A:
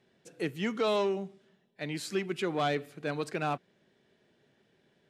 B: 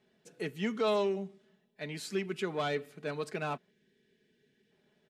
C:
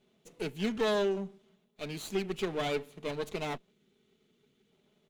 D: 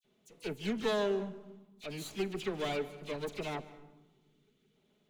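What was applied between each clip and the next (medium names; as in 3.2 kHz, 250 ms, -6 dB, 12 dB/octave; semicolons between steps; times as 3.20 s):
time-frequency box 3.70–4.71 s, 500–1500 Hz -12 dB; comb 4.7 ms, depth 44%; trim -3.5 dB
comb filter that takes the minimum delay 0.3 ms; trim +1.5 dB
phase dispersion lows, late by 47 ms, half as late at 2.6 kHz; on a send at -15.5 dB: reverberation RT60 1.2 s, pre-delay 148 ms; on the sum: trim -2.5 dB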